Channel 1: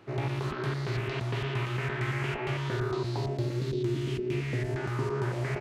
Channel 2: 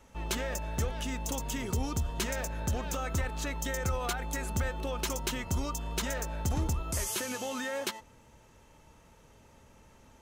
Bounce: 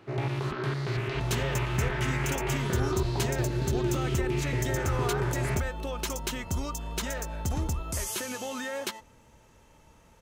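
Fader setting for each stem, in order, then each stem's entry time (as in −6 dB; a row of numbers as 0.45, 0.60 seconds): +1.0, +0.5 decibels; 0.00, 1.00 seconds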